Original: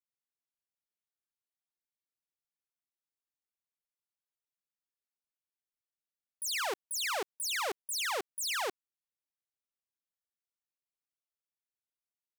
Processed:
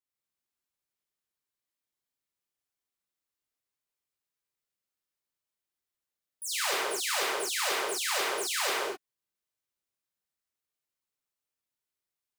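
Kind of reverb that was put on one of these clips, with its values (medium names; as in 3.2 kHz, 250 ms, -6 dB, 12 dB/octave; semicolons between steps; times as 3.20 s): gated-style reverb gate 280 ms flat, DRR -7 dB; trim -3 dB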